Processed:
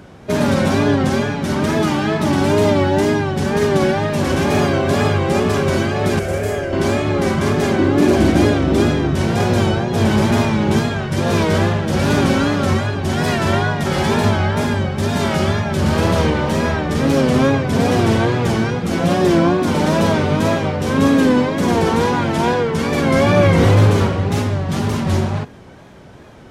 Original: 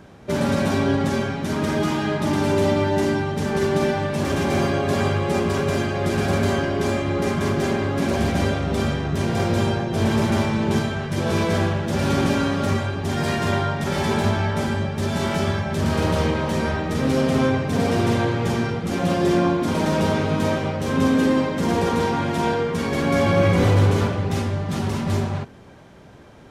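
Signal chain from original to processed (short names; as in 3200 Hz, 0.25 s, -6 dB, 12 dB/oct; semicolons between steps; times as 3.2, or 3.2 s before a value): 7.79–9.12 bell 320 Hz +14.5 dB 0.35 oct; wow and flutter 91 cents; 6.19–6.73 graphic EQ 125/250/500/1000/4000 Hz -6/-12/+5/-11/-11 dB; gain +5 dB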